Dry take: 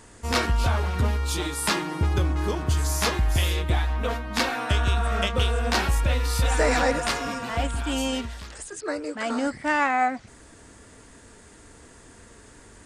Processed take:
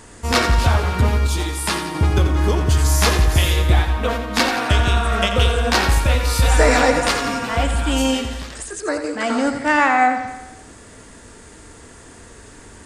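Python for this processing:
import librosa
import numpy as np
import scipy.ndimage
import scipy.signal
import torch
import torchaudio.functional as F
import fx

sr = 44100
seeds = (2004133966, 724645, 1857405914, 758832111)

y = fx.comb_fb(x, sr, f0_hz=85.0, decay_s=0.23, harmonics='all', damping=0.0, mix_pct=60, at=(1.27, 1.95))
y = fx.echo_feedback(y, sr, ms=87, feedback_pct=56, wet_db=-9.0)
y = y * librosa.db_to_amplitude(6.5)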